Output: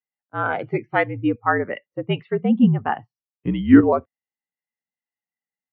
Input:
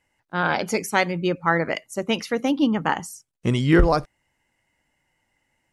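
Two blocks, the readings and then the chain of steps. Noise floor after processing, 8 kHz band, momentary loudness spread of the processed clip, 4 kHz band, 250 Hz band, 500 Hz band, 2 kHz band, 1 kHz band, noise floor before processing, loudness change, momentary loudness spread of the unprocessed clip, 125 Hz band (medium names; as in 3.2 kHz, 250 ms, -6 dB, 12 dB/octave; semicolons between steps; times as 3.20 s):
under -85 dBFS, under -40 dB, 15 LU, -8.5 dB, +5.0 dB, +0.5 dB, -1.5 dB, 0.0 dB, -74 dBFS, +2.0 dB, 10 LU, +0.5 dB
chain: mistuned SSB -60 Hz 180–3500 Hz; spectral contrast expander 1.5:1; trim +4.5 dB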